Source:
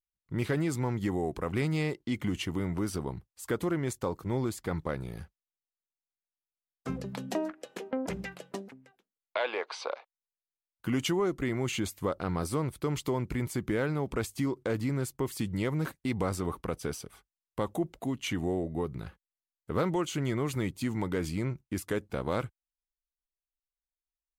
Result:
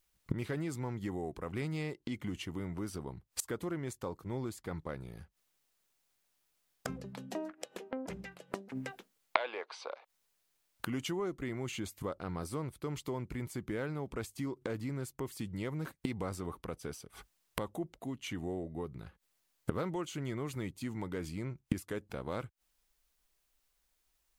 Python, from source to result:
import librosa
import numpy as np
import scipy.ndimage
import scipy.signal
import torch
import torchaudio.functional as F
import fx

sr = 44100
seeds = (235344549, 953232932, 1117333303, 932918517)

y = fx.gate_flip(x, sr, shuts_db=-37.0, range_db=-25)
y = y * librosa.db_to_amplitude(17.5)